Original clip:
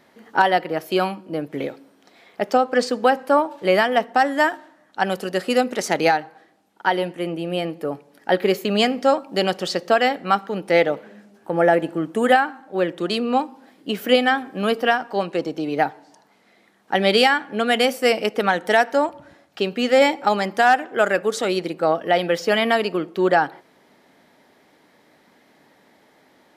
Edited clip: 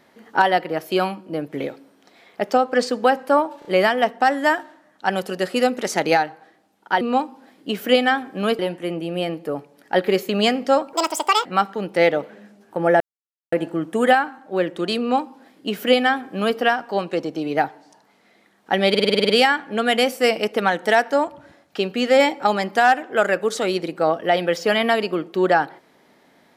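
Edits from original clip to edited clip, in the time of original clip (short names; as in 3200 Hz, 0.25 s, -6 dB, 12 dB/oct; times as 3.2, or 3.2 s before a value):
3.59 stutter 0.03 s, 3 plays
9.29–10.19 speed 172%
11.74 insert silence 0.52 s
13.21–14.79 copy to 6.95
17.11 stutter 0.05 s, 9 plays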